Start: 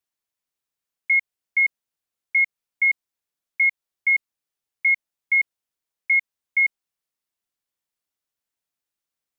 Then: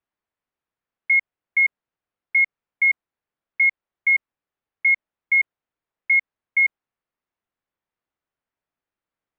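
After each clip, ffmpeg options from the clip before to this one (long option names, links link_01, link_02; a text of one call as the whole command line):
ffmpeg -i in.wav -af "lowpass=1900,volume=5.5dB" out.wav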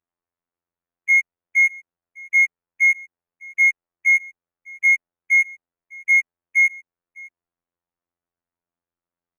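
ffmpeg -i in.wav -af "adynamicsmooth=sensitivity=6.5:basefreq=2100,afftfilt=real='hypot(re,im)*cos(PI*b)':imag='0':win_size=2048:overlap=0.75,aecho=1:1:604:0.0668,volume=3dB" out.wav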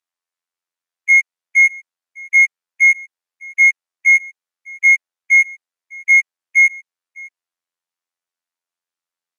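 ffmpeg -i in.wav -af "bandpass=frequency=4900:width_type=q:width=0.53:csg=0,volume=8dB" out.wav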